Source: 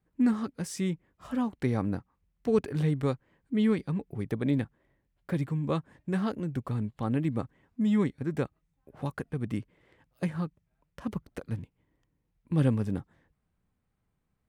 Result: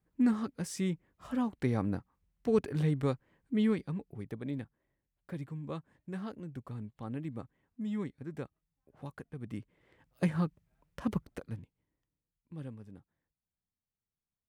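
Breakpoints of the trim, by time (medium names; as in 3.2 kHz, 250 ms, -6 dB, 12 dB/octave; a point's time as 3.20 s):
3.57 s -2.5 dB
4.43 s -10.5 dB
9.37 s -10.5 dB
10.27 s +1.5 dB
11.17 s +1.5 dB
11.60 s -8.5 dB
12.76 s -20 dB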